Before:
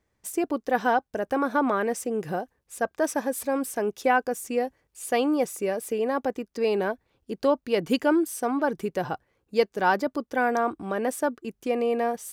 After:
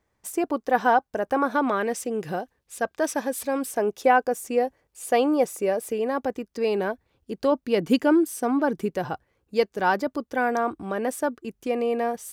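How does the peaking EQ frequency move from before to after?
peaking EQ +4.5 dB 1.4 oct
940 Hz
from 1.52 s 3.6 kHz
from 3.71 s 630 Hz
from 5.89 s 75 Hz
from 7.52 s 240 Hz
from 8.94 s 65 Hz

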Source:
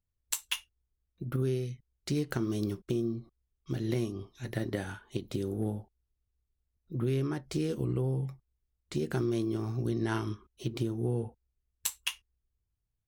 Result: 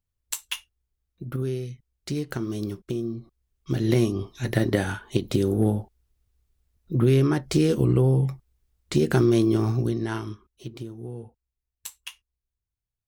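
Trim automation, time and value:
3.07 s +2 dB
4.04 s +11 dB
9.69 s +11 dB
10.01 s +3 dB
10.96 s -5.5 dB

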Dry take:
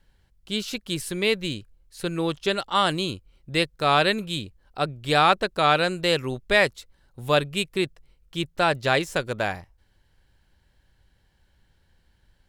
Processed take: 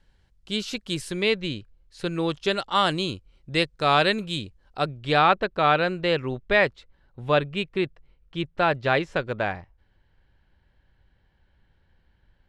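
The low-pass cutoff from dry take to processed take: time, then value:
1.02 s 8 kHz
1.50 s 4.1 kHz
2.37 s 7.2 kHz
4.80 s 7.2 kHz
5.30 s 2.9 kHz

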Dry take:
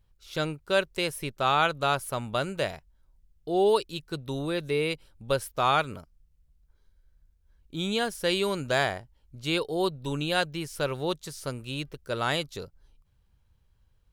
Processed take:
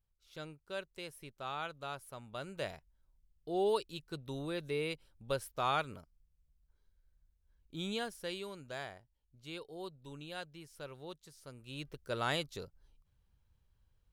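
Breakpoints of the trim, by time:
2.27 s -17 dB
2.70 s -9 dB
7.90 s -9 dB
8.53 s -18 dB
11.48 s -18 dB
11.94 s -6.5 dB

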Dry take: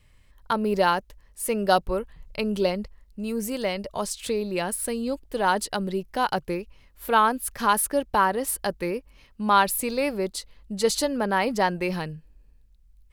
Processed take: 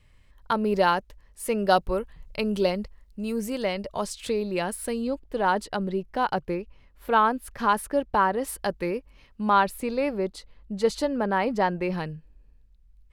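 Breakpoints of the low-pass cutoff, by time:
low-pass 6 dB/octave
5.5 kHz
from 1.80 s 11 kHz
from 3.40 s 5 kHz
from 5.07 s 2.1 kHz
from 8.42 s 4.2 kHz
from 9.50 s 1.8 kHz
from 11.98 s 3.4 kHz

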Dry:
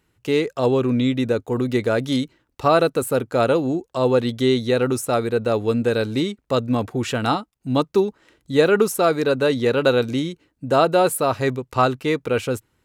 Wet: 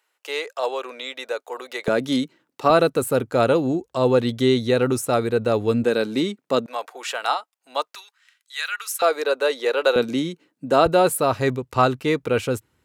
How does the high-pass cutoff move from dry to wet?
high-pass 24 dB/octave
570 Hz
from 1.88 s 160 Hz
from 2.70 s 49 Hz
from 5.84 s 170 Hz
from 6.66 s 600 Hz
from 7.95 s 1.5 kHz
from 9.02 s 440 Hz
from 9.96 s 160 Hz
from 10.86 s 44 Hz

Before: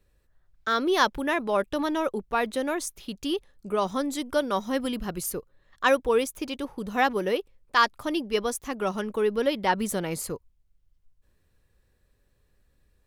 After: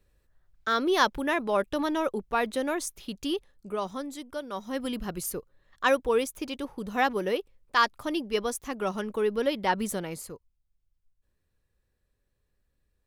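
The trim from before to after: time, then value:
3.25 s -1 dB
4.42 s -11 dB
4.92 s -2 dB
9.88 s -2 dB
10.32 s -9 dB

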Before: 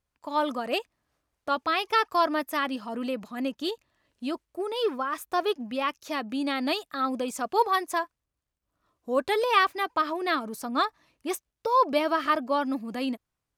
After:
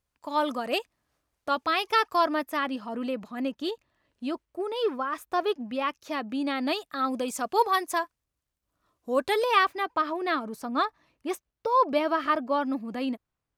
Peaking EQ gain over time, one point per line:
peaking EQ 13 kHz 2.3 oct
2.02 s +2 dB
2.57 s -6.5 dB
6.56 s -6.5 dB
7.22 s +2.5 dB
9.34 s +2.5 dB
9.85 s -8 dB

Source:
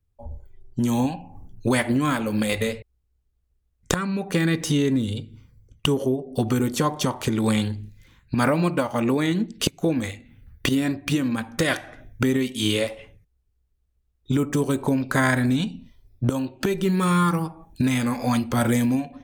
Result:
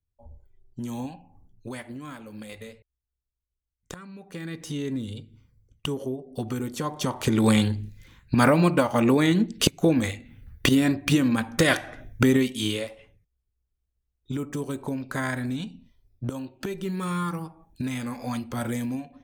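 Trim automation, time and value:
1.15 s -11 dB
1.87 s -17 dB
4.22 s -17 dB
4.94 s -8 dB
6.81 s -8 dB
7.37 s +2 dB
12.38 s +2 dB
12.86 s -8.5 dB

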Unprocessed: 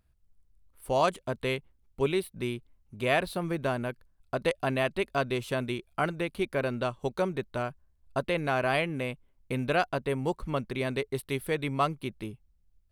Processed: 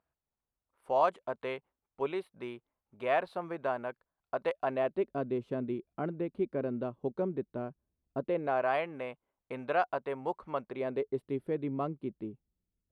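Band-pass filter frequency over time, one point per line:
band-pass filter, Q 1.1
4.62 s 840 Hz
5.11 s 290 Hz
8.17 s 290 Hz
8.68 s 840 Hz
10.58 s 840 Hz
11.25 s 300 Hz

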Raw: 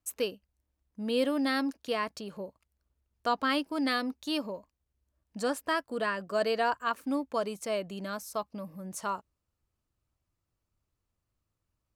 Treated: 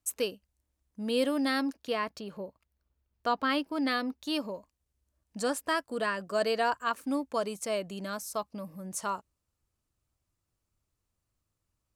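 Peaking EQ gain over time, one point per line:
peaking EQ 8.4 kHz 1.3 oct
1.35 s +5 dB
2.06 s -5 dB
4.11 s -5 dB
4.53 s +5 dB

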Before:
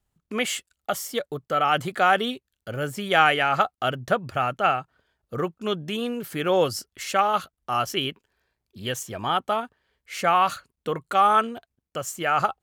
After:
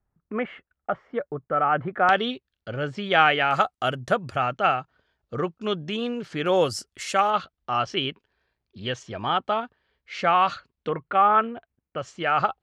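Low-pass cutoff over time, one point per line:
low-pass 24 dB/octave
1.8 kHz
from 2.09 s 4.8 kHz
from 3.51 s 10 kHz
from 4.36 s 5.9 kHz
from 6.46 s 9.8 kHz
from 7.30 s 4.9 kHz
from 10.89 s 2.6 kHz
from 11.98 s 4.6 kHz

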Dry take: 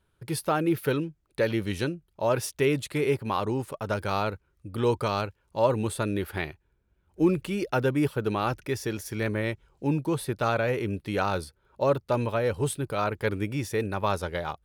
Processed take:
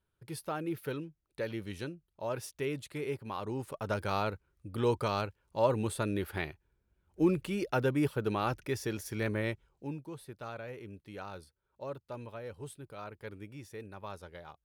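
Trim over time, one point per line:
3.37 s -11 dB
3.77 s -4.5 dB
9.51 s -4.5 dB
10.06 s -17 dB

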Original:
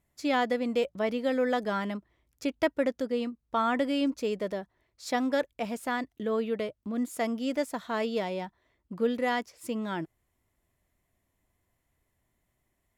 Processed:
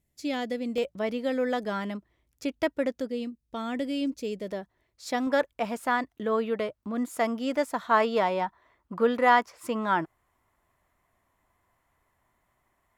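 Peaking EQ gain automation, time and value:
peaking EQ 1.1 kHz 1.6 oct
-11 dB
from 0.78 s -1.5 dB
from 3.09 s -11.5 dB
from 4.48 s -0.5 dB
from 5.27 s +7.5 dB
from 7.91 s +14 dB

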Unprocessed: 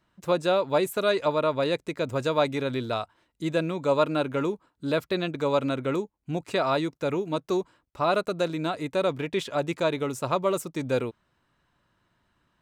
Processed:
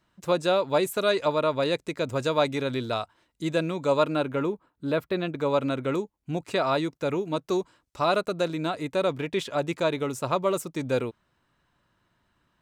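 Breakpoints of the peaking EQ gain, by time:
peaking EQ 6.5 kHz 1.8 oct
3.97 s +3 dB
4.51 s -8.5 dB
5.14 s -8.5 dB
5.85 s +0.5 dB
7.42 s +0.5 dB
8.01 s +9.5 dB
8.20 s +0.5 dB

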